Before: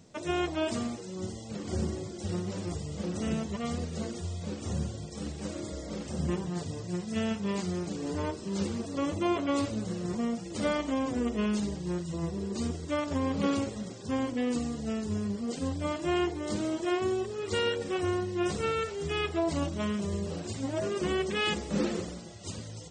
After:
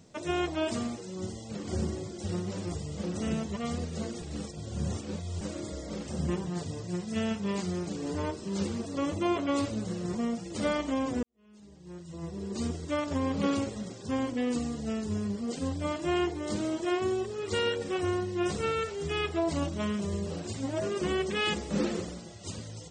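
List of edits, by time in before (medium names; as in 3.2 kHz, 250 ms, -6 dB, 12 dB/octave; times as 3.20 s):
4.22–5.41 s: reverse
11.23–12.63 s: fade in quadratic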